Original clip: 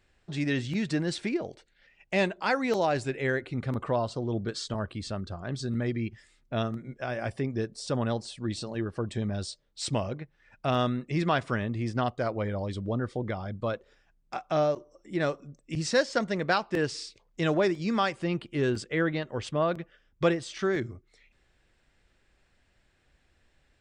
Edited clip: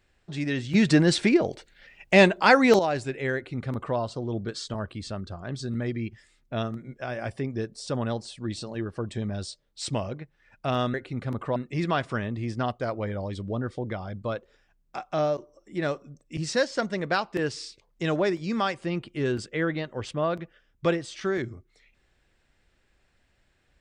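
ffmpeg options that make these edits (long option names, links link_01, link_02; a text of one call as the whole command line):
ffmpeg -i in.wav -filter_complex "[0:a]asplit=5[link_01][link_02][link_03][link_04][link_05];[link_01]atrim=end=0.742[link_06];[link_02]atrim=start=0.738:end=2.792,asetpts=PTS-STARTPTS,volume=9.5dB[link_07];[link_03]atrim=start=2.788:end=10.942[link_08];[link_04]atrim=start=3.348:end=3.972[link_09];[link_05]atrim=start=10.938[link_10];[link_06][link_07]acrossfade=duration=0.004:curve1=hsin:curve2=hsin[link_11];[link_11][link_08]acrossfade=duration=0.004:curve1=hsin:curve2=hsin[link_12];[link_12][link_09]acrossfade=duration=0.004:curve1=hsin:curve2=hsin[link_13];[link_13][link_10]acrossfade=duration=0.004:curve1=hsin:curve2=hsin" out.wav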